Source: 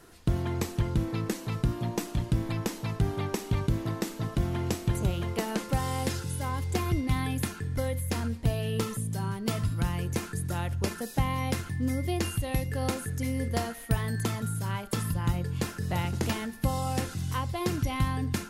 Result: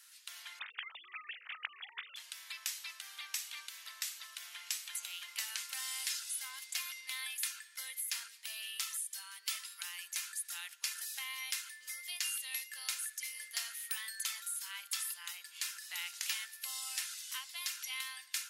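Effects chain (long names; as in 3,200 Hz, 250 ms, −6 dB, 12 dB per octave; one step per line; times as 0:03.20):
0:00.59–0:02.16: three sine waves on the formant tracks
Bessel high-pass filter 2,700 Hz, order 4
level +2.5 dB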